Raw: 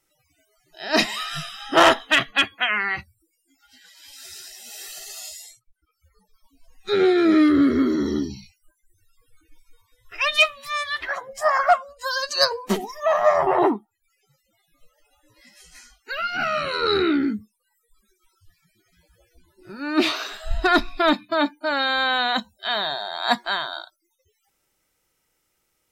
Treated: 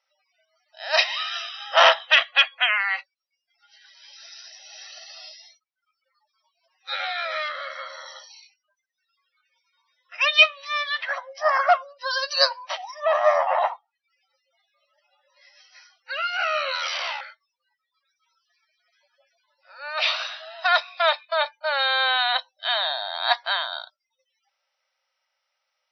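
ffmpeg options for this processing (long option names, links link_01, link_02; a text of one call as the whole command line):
ffmpeg -i in.wav -filter_complex "[0:a]asettb=1/sr,asplit=3[link_01][link_02][link_03];[link_01]atrim=end=16.754[link_04];[link_02]atrim=start=16.75:end=17.21,asetpts=PTS-STARTPTS,afade=type=in:duration=0.004:curve=qsin,afade=type=out:start_time=0.456:duration=0.004:curve=qsin,aeval=exprs='0.0841*(abs(mod(val(0)/0.0841+3,4)-2)-1)':channel_layout=same[link_05];[link_03]atrim=start=17.206[link_06];[link_04][link_05]acrossfade=duration=0.004:curve1=hsin:curve2=qsin[link_07];[link_07][link_06]acrossfade=duration=0.004:curve1=qsin:curve2=hsin,afftfilt=real='re*between(b*sr/4096,510,6000)':imag='im*between(b*sr/4096,510,6000)':win_size=4096:overlap=0.75,adynamicequalizer=threshold=0.0158:dfrequency=2900:dqfactor=1.3:tfrequency=2900:tqfactor=1.3:attack=5:release=100:ratio=0.375:range=2.5:mode=boostabove:tftype=bell,volume=-1.5dB" out.wav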